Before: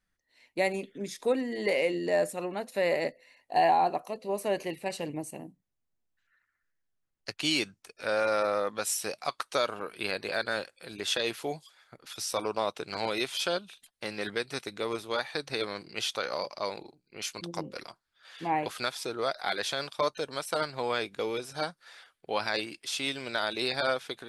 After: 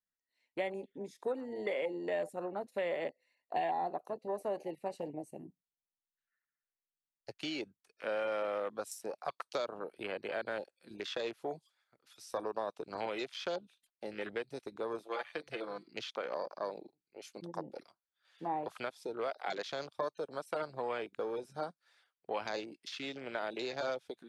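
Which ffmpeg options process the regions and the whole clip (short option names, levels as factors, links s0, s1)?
-filter_complex "[0:a]asettb=1/sr,asplit=3[s0][s1][s2];[s0]atrim=end=15.024[s3];[s1]atrim=start=15.02:end=15.88,asetpts=PTS-STARTPTS,afade=t=in:d=0.004:c=qsin,afade=t=out:st=0.856:d=0.004:c=qsin,lowshelf=f=440:g=-6.5,aecho=1:1:5.9:0.66,atrim=end_sample=37926,bandreject=f=146.5:t=h:w=4,bandreject=f=293:t=h:w=4,bandreject=f=439.5:t=h:w=4,bandreject=f=586:t=h:w=4,bandreject=f=732.5:t=h:w=4,bandreject=f=879:t=h:w=4,bandreject=f=1025.5:t=h:w=4,bandreject=f=1172:t=h:w=4,bandreject=f=1318.5:t=h:w=4,bandreject=f=1465:t=h:w=4,bandreject=f=1611.5:t=h:w=4,bandreject=f=1758:t=h:w=4,bandreject=f=1904.5:t=h:w=4,bandreject=f=2051:t=h:w=4,bandreject=f=2197.5:t=h:w=4,bandreject=f=2344:t=h:w=4,bandreject=f=2490.5:t=h:w=4,bandreject=f=2637:t=h:w=4,bandreject=f=2783.5:t=h:w=4,bandreject=f=2930:t=h:w=4,bandreject=f=3076.5:t=h:w=4,bandreject=f=3223:t=h:w=4,bandreject=f=3369.5:t=h:w=4,bandreject=f=3516:t=h:w=4,bandreject=f=3662.5:t=h:w=4,bandreject=f=3809:t=h:w=4,bandreject=f=3955.5:t=h:w=4,bandreject=f=4102:t=h:w=4,bandreject=f=4248.5:t=h:w=4,bandreject=f=4395:t=h:w=4,bandreject=f=4541.5:t=h:w=4,bandreject=f=4688:t=h:w=4,bandreject=f=4834.5:t=h:w=4,bandreject=f=4981:t=h:w=4[s4];[s2]atrim=start=15.876[s5];[s3][s4]acrossfade=d=0.004:c1=hsin:c2=qsin[s6];[s6][s5]acrossfade=d=0.004:c1=qsin:c2=hsin,afwtdn=0.0158,lowshelf=f=110:g=-9.5,acrossover=split=410|960|2300[s7][s8][s9][s10];[s7]acompressor=threshold=0.00631:ratio=4[s11];[s8]acompressor=threshold=0.02:ratio=4[s12];[s9]acompressor=threshold=0.00398:ratio=4[s13];[s10]acompressor=threshold=0.00562:ratio=4[s14];[s11][s12][s13][s14]amix=inputs=4:normalize=0,volume=0.841"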